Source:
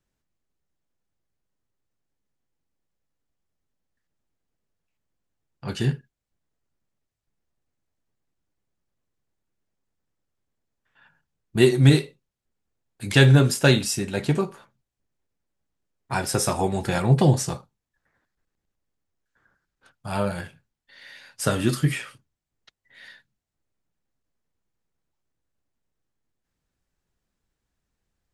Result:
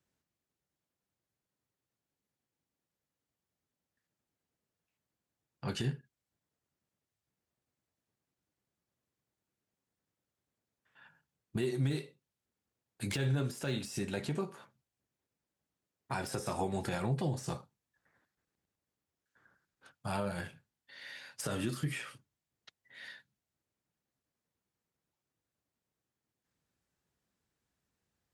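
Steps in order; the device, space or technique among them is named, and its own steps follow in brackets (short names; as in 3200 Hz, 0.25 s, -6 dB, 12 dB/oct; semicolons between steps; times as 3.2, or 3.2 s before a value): podcast mastering chain (HPF 86 Hz 12 dB/oct; de-esser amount 60%; compressor 2.5:1, threshold -31 dBFS, peak gain reduction 14 dB; limiter -21.5 dBFS, peak gain reduction 9 dB; gain -2 dB; MP3 112 kbps 44100 Hz)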